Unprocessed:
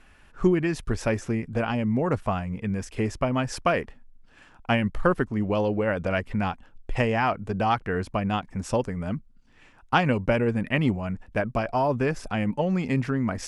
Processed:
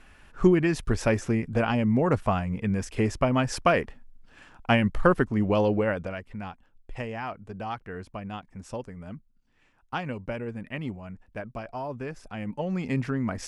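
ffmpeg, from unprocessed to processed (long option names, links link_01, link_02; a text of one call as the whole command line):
ffmpeg -i in.wav -af "volume=9.5dB,afade=type=out:start_time=5.75:duration=0.4:silence=0.251189,afade=type=in:start_time=12.29:duration=0.67:silence=0.398107" out.wav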